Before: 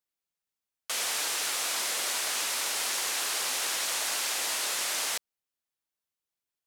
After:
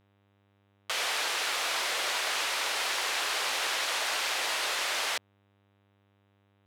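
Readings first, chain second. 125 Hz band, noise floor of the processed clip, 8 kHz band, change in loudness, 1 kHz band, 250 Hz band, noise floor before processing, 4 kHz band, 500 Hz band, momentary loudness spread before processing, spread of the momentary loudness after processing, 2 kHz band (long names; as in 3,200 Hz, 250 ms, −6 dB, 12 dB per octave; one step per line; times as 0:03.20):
can't be measured, −68 dBFS, −5.5 dB, −0.5 dB, +4.0 dB, −0.5 dB, below −85 dBFS, +1.0 dB, +3.5 dB, 2 LU, 2 LU, +3.5 dB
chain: three-way crossover with the lows and the highs turned down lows −21 dB, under 290 Hz, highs −12 dB, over 4,400 Hz
hum with harmonics 100 Hz, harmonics 39, −72 dBFS −5 dB per octave
level +4 dB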